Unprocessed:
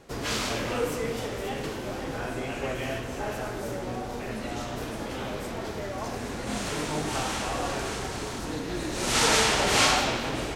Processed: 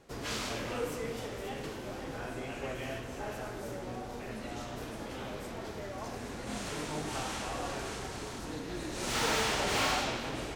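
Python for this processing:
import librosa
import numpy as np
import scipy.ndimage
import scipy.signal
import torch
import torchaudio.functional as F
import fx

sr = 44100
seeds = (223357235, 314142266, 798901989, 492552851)

y = fx.slew_limit(x, sr, full_power_hz=260.0)
y = F.gain(torch.from_numpy(y), -7.0).numpy()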